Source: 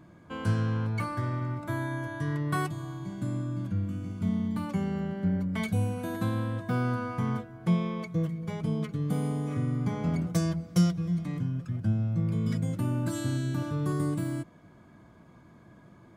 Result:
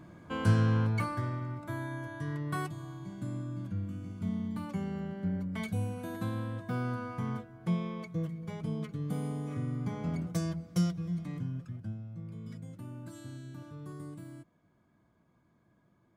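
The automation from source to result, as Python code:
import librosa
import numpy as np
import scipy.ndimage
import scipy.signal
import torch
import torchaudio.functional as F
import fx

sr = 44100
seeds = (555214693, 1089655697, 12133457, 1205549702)

y = fx.gain(x, sr, db=fx.line((0.8, 2.0), (1.45, -5.5), (11.57, -5.5), (12.03, -15.0)))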